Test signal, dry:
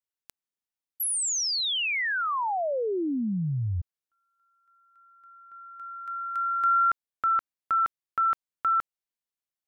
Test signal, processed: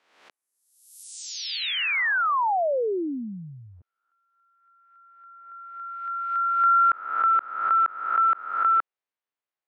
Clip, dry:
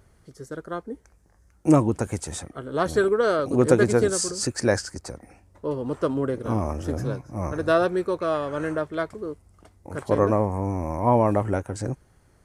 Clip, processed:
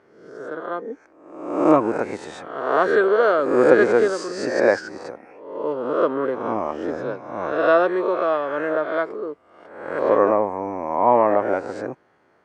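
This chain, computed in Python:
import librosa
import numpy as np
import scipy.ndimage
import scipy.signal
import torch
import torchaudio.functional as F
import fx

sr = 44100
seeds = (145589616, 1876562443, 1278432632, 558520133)

y = fx.spec_swells(x, sr, rise_s=0.83)
y = fx.bandpass_edges(y, sr, low_hz=370.0, high_hz=2400.0)
y = y * librosa.db_to_amplitude(4.0)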